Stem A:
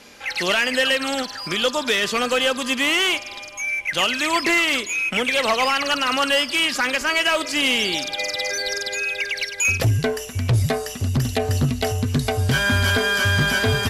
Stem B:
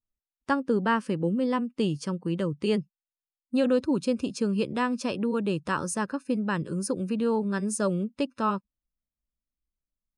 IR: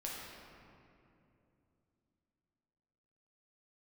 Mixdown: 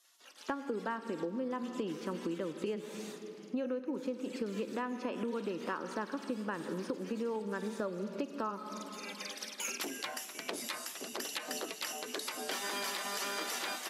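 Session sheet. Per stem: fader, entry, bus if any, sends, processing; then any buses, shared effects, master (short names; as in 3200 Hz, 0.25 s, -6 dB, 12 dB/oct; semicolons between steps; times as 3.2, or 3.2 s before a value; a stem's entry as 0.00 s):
-12.5 dB, 0.00 s, send -19.5 dB, spectral gate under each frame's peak -15 dB weak; AGC gain up to 5.5 dB; auto duck -17 dB, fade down 0.30 s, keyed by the second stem
-1.0 dB, 0.00 s, send -9.5 dB, LPF 2400 Hz 12 dB/oct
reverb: on, RT60 2.8 s, pre-delay 6 ms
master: HPF 240 Hz 24 dB/oct; compressor 10:1, threshold -33 dBFS, peak gain reduction 15 dB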